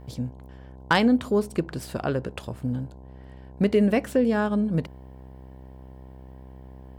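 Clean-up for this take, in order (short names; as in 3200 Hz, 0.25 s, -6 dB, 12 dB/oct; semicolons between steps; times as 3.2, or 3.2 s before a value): clip repair -9.5 dBFS; de-hum 64.9 Hz, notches 16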